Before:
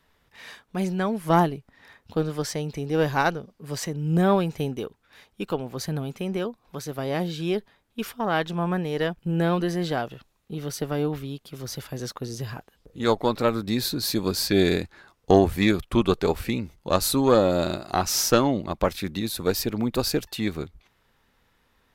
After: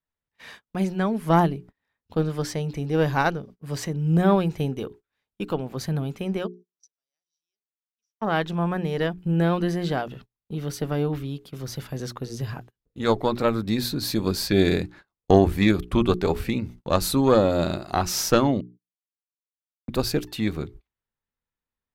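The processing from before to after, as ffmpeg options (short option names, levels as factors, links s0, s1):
-filter_complex "[0:a]asplit=3[s0][s1][s2];[s0]afade=t=out:st=6.46:d=0.02[s3];[s1]bandpass=f=5800:t=q:w=17,afade=t=in:st=6.46:d=0.02,afade=t=out:st=8.21:d=0.02[s4];[s2]afade=t=in:st=8.21:d=0.02[s5];[s3][s4][s5]amix=inputs=3:normalize=0,asplit=3[s6][s7][s8];[s6]atrim=end=18.61,asetpts=PTS-STARTPTS,afade=t=out:st=18.606:d=0.004:c=hsin[s9];[s7]atrim=start=18.61:end=19.88,asetpts=PTS-STARTPTS,volume=0[s10];[s8]atrim=start=19.88,asetpts=PTS-STARTPTS,afade=t=in:d=0.004:c=hsin[s11];[s9][s10][s11]concat=n=3:v=0:a=1,bandreject=f=60:t=h:w=6,bandreject=f=120:t=h:w=6,bandreject=f=180:t=h:w=6,bandreject=f=240:t=h:w=6,bandreject=f=300:t=h:w=6,bandreject=f=360:t=h:w=6,bandreject=f=420:t=h:w=6,agate=range=0.0398:threshold=0.00562:ratio=16:detection=peak,bass=f=250:g=4,treble=f=4000:g=-3"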